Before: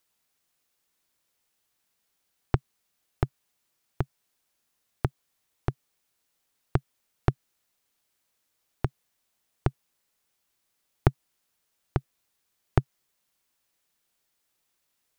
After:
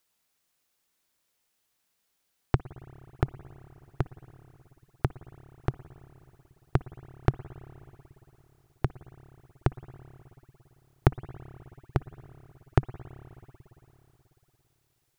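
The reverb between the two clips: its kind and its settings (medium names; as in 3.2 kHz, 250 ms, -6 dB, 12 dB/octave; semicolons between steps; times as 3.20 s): spring tank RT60 3.5 s, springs 55/59 ms, chirp 80 ms, DRR 14.5 dB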